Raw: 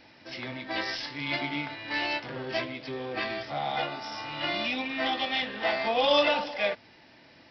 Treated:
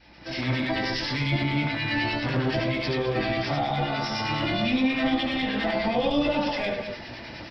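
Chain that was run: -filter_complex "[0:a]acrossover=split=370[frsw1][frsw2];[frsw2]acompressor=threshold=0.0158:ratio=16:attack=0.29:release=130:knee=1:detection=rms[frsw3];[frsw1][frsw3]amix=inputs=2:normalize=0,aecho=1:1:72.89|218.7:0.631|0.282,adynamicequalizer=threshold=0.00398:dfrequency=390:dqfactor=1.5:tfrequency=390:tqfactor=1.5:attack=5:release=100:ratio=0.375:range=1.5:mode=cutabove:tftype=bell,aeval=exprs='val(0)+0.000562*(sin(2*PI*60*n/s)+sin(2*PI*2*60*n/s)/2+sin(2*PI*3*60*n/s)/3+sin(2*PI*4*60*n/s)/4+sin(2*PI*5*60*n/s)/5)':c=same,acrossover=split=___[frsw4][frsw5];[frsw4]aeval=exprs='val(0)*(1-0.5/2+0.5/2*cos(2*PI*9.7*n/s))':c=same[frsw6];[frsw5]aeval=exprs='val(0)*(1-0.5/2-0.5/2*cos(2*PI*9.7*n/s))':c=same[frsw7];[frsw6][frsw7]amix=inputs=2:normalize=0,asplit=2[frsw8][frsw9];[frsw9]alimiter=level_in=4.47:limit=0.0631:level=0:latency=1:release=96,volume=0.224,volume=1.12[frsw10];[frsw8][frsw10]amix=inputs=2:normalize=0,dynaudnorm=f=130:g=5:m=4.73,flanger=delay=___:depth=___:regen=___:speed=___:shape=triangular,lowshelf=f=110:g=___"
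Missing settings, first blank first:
1400, 5.5, 3.8, -44, 0.34, 7.5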